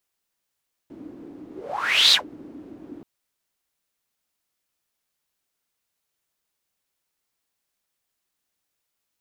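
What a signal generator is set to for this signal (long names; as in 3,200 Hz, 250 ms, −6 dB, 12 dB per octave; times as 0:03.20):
pass-by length 2.13 s, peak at 0:01.23, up 0.66 s, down 0.12 s, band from 300 Hz, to 4,000 Hz, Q 6.9, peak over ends 26 dB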